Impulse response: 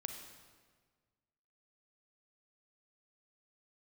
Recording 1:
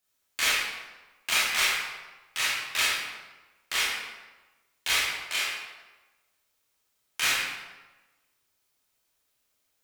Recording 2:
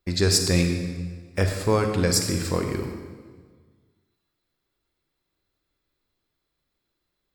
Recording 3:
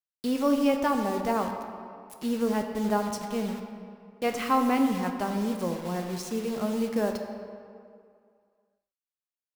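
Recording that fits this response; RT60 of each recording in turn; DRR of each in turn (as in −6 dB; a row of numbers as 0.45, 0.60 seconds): 2; 1.2, 1.6, 2.3 seconds; −7.5, 4.5, 4.0 decibels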